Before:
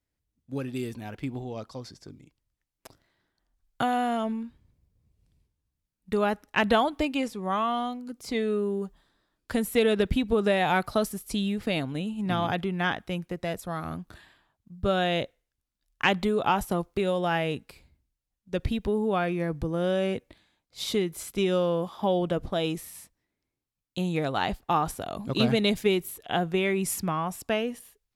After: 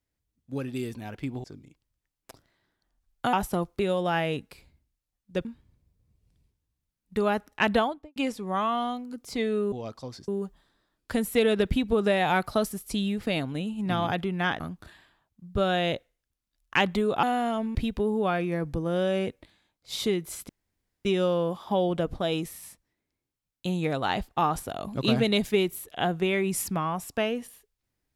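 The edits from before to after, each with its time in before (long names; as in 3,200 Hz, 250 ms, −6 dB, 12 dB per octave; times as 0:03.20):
0:01.44–0:02.00: move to 0:08.68
0:03.89–0:04.41: swap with 0:16.51–0:18.63
0:06.64–0:07.12: fade out and dull
0:13.00–0:13.88: remove
0:21.37: splice in room tone 0.56 s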